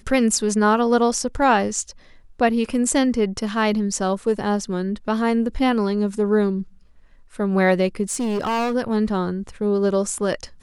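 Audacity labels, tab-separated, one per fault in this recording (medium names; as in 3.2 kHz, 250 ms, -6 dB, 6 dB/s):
8.030000	8.750000	clipped -19.5 dBFS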